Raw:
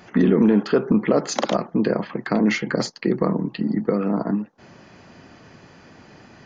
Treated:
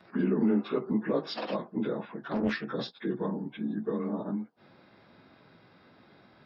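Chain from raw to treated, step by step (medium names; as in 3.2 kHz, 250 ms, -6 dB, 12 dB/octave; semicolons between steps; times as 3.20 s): frequency axis rescaled in octaves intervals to 92%; bass shelf 65 Hz -8.5 dB; 2.20–2.65 s: loudspeaker Doppler distortion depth 0.61 ms; trim -7.5 dB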